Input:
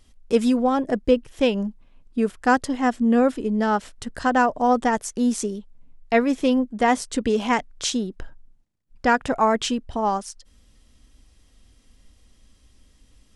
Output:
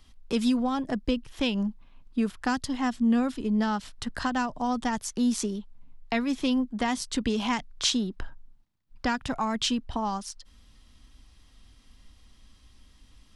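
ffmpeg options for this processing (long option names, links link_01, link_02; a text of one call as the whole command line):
ffmpeg -i in.wav -filter_complex "[0:a]equalizer=frequency=500:width_type=o:width=1:gain=-6,equalizer=frequency=1000:width_type=o:width=1:gain=5,equalizer=frequency=4000:width_type=o:width=1:gain=4,equalizer=frequency=8000:width_type=o:width=1:gain=-5,acrossover=split=230|3000[link_01][link_02][link_03];[link_02]acompressor=threshold=-30dB:ratio=4[link_04];[link_01][link_04][link_03]amix=inputs=3:normalize=0" out.wav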